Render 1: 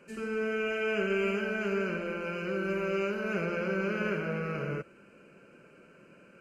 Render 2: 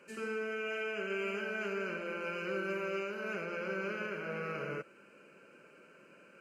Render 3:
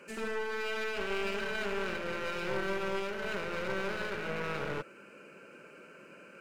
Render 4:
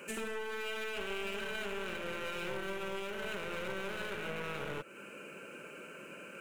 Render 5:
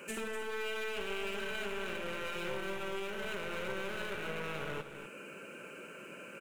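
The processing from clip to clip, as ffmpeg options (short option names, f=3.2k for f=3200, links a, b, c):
-af "highpass=f=410:p=1,bandreject=f=700:w=23,alimiter=level_in=3.5dB:limit=-24dB:level=0:latency=1:release=486,volume=-3.5dB"
-af "aeval=exprs='clip(val(0),-1,0.00316)':c=same,volume=6dB"
-af "acompressor=threshold=-41dB:ratio=3,aexciter=amount=1.2:drive=5.4:freq=2.6k,volume=3.5dB"
-af "aecho=1:1:249:0.316"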